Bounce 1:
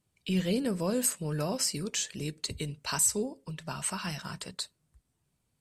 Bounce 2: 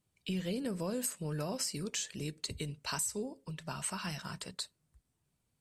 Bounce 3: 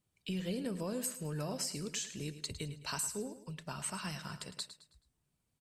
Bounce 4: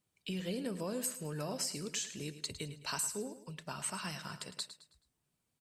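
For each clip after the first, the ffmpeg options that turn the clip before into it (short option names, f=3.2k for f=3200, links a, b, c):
-af "acompressor=threshold=-29dB:ratio=6,volume=-3dB"
-af "aecho=1:1:107|214|321|428:0.237|0.0877|0.0325|0.012,volume=-2dB"
-af "lowshelf=f=110:g=-10.5,volume=1dB"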